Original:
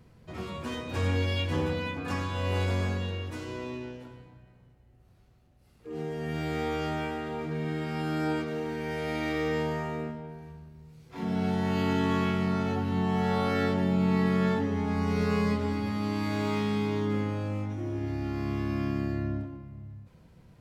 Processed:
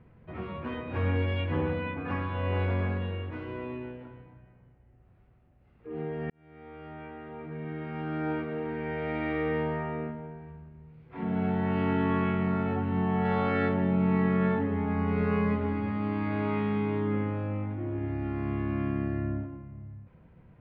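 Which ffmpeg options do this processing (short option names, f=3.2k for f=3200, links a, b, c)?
-filter_complex "[0:a]asettb=1/sr,asplit=3[a][b][c];[a]atrim=end=13.254[d];[b]atrim=start=13.25:end=13.69,asetpts=PTS-STARTPTS,afade=t=in:d=0.004:c=qsin,afade=t=out:st=0.436:d=0.004:c=qsin,highshelf=f=4.3k:g=11.5[e];[c]atrim=start=13.686[f];[d][e]acrossfade=d=0.004:c1=hsin:c2=qsin[g];[g][f]acrossfade=d=0.004:c1=qsin:c2=hsin,asplit=2[h][i];[h]atrim=end=6.3,asetpts=PTS-STARTPTS,afade=t=out:st=6.296:d=0.004:c=hsin[j];[i]atrim=start=6.3,asetpts=PTS-STARTPTS,afade=t=in:d=2.46[k];[j][k]concat=n=2:v=0:a=1,lowpass=f=2.5k:w=0.5412,lowpass=f=2.5k:w=1.3066"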